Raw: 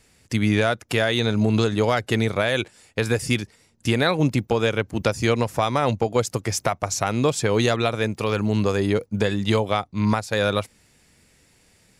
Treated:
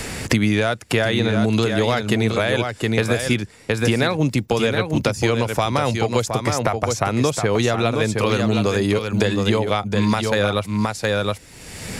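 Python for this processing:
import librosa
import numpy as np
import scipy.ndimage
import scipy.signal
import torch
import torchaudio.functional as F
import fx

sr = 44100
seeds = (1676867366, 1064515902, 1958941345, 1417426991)

p1 = x + fx.echo_single(x, sr, ms=717, db=-7.0, dry=0)
p2 = fx.band_squash(p1, sr, depth_pct=100)
y = p2 * 10.0 ** (1.0 / 20.0)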